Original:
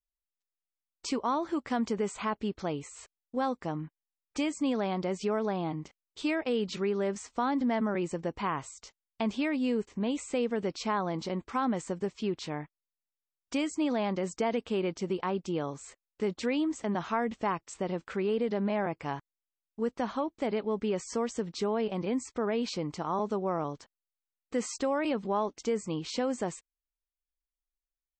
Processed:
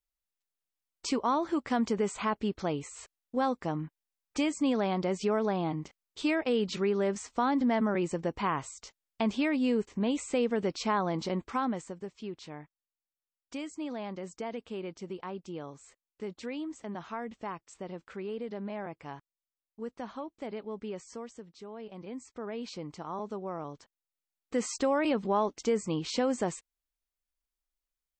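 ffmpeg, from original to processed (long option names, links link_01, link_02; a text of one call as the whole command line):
ffmpeg -i in.wav -af "volume=20dB,afade=type=out:start_time=11.42:duration=0.52:silence=0.334965,afade=type=out:start_time=20.92:duration=0.63:silence=0.375837,afade=type=in:start_time=21.55:duration=1.25:silence=0.316228,afade=type=in:start_time=23.63:duration=1.22:silence=0.375837" out.wav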